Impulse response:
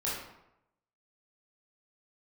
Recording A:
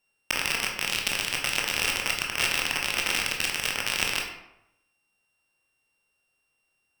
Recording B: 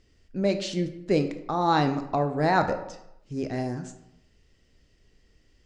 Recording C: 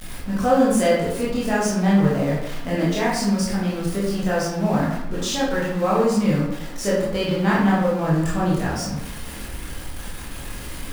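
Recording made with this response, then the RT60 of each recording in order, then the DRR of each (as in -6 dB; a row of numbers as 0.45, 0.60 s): C; 0.85, 0.85, 0.85 s; -0.5, 7.0, -7.5 dB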